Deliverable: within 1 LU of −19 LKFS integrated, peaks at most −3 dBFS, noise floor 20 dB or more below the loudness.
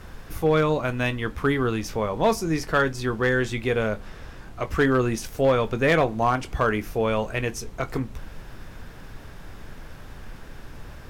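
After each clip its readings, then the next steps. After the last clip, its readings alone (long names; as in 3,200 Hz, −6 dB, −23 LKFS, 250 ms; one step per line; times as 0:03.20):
share of clipped samples 0.2%; peaks flattened at −12.5 dBFS; background noise floor −42 dBFS; target noise floor −44 dBFS; integrated loudness −24.0 LKFS; sample peak −12.5 dBFS; target loudness −19.0 LKFS
→ clipped peaks rebuilt −12.5 dBFS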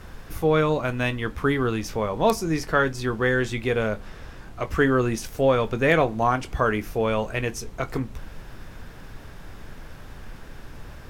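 share of clipped samples 0.0%; background noise floor −42 dBFS; target noise floor −44 dBFS
→ noise reduction from a noise print 6 dB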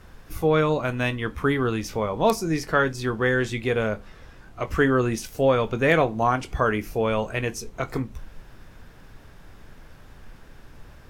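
background noise floor −48 dBFS; integrated loudness −24.0 LKFS; sample peak −5.0 dBFS; target loudness −19.0 LKFS
→ level +5 dB
brickwall limiter −3 dBFS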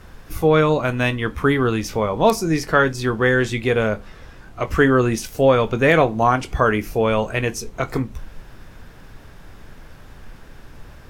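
integrated loudness −19.0 LKFS; sample peak −3.0 dBFS; background noise floor −43 dBFS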